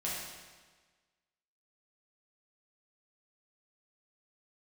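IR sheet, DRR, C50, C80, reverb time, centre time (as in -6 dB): -7.5 dB, -1.0 dB, 2.0 dB, 1.4 s, 88 ms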